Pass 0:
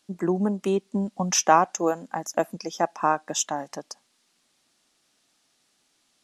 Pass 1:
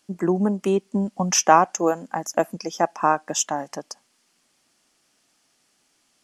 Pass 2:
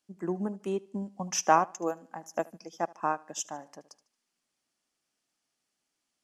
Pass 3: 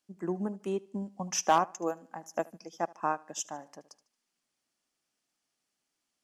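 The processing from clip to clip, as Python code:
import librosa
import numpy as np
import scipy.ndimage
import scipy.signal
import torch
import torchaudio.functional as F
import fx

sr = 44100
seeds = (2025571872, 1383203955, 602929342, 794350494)

y1 = fx.peak_eq(x, sr, hz=3800.0, db=-7.5, octaves=0.23)
y1 = y1 * 10.0 ** (3.0 / 20.0)
y2 = fx.echo_feedback(y1, sr, ms=75, feedback_pct=39, wet_db=-17)
y2 = fx.upward_expand(y2, sr, threshold_db=-30.0, expansion=1.5)
y2 = y2 * 10.0 ** (-7.0 / 20.0)
y3 = np.clip(y2, -10.0 ** (-13.5 / 20.0), 10.0 ** (-13.5 / 20.0))
y3 = y3 * 10.0 ** (-1.0 / 20.0)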